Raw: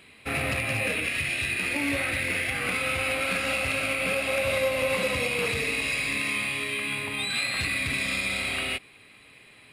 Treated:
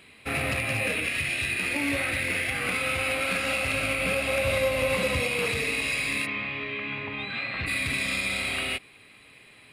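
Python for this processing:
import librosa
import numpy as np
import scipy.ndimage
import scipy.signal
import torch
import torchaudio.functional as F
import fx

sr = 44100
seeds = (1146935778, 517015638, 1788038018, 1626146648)

y = fx.low_shelf(x, sr, hz=110.0, db=10.0, at=(3.71, 5.21))
y = fx.bessel_lowpass(y, sr, hz=2400.0, order=4, at=(6.25, 7.66), fade=0.02)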